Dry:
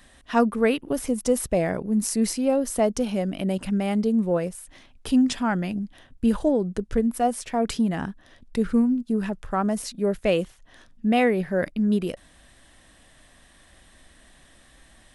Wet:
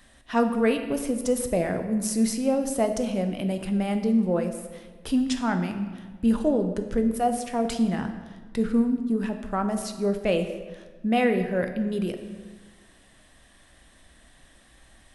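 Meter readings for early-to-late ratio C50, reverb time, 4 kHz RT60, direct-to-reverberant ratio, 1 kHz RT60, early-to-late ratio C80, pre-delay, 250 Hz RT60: 9.0 dB, 1.4 s, 0.95 s, 6.0 dB, 1.4 s, 10.0 dB, 10 ms, 1.6 s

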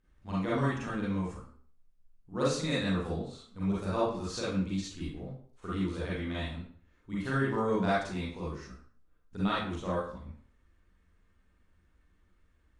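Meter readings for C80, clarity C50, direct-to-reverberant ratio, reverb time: 6.0 dB, -2.0 dB, -8.5 dB, 0.50 s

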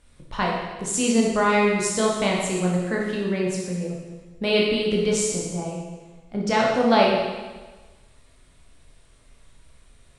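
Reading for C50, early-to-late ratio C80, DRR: 1.0 dB, 3.0 dB, -3.0 dB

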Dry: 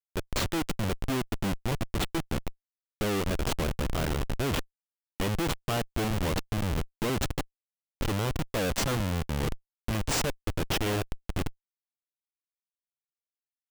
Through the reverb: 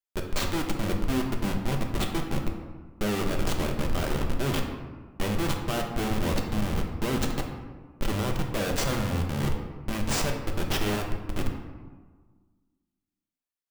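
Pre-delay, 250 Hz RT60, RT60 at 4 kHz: 3 ms, 1.8 s, 0.75 s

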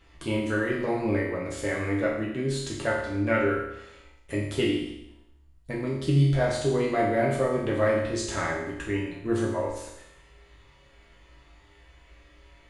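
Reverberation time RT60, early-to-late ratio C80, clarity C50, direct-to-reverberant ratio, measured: 0.85 s, 5.5 dB, 2.5 dB, -5.5 dB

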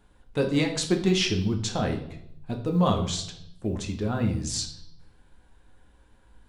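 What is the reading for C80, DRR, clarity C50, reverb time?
12.5 dB, 2.5 dB, 9.0 dB, 0.75 s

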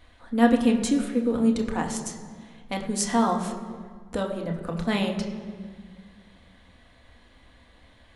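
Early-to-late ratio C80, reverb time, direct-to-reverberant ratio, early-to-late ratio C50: 9.5 dB, 1.7 s, 1.5 dB, 8.0 dB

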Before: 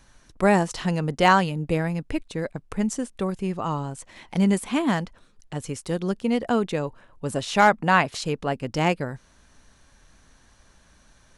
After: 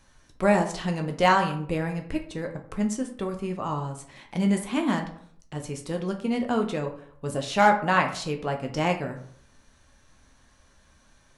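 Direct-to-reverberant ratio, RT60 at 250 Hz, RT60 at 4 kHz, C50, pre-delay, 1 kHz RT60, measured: 3.0 dB, 0.65 s, 0.35 s, 10.0 dB, 8 ms, 0.55 s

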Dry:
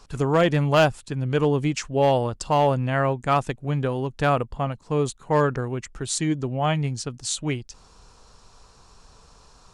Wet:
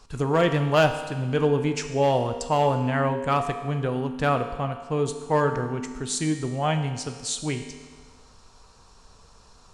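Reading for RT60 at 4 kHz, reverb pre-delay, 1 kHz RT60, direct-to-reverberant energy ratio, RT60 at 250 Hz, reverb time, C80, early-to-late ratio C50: 1.4 s, 4 ms, 1.5 s, 6.0 dB, 1.5 s, 1.5 s, 9.5 dB, 8.5 dB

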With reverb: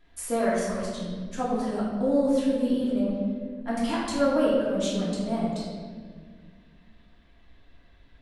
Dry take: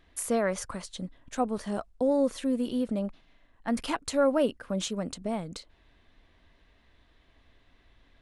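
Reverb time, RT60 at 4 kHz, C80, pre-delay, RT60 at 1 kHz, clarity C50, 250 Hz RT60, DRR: 1.7 s, 1.1 s, 2.0 dB, 3 ms, 1.4 s, -0.5 dB, 2.8 s, -7.0 dB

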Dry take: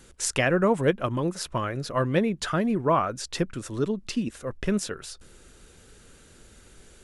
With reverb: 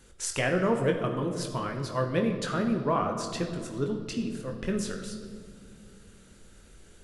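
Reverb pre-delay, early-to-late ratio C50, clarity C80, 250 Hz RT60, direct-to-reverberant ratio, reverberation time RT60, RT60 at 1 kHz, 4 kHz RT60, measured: 21 ms, 6.5 dB, 8.0 dB, 3.5 s, 3.0 dB, 2.1 s, 1.7 s, 1.4 s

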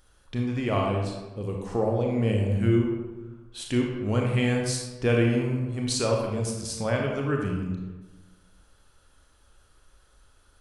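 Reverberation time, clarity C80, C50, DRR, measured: 1.2 s, 5.0 dB, 2.0 dB, 0.0 dB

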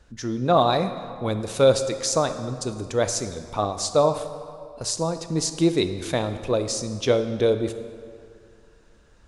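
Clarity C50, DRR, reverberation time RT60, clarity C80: 10.0 dB, 9.0 dB, 2.3 s, 11.0 dB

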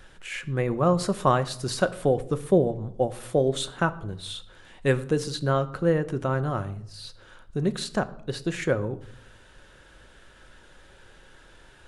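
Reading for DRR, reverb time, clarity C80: 10.5 dB, 0.70 s, 20.0 dB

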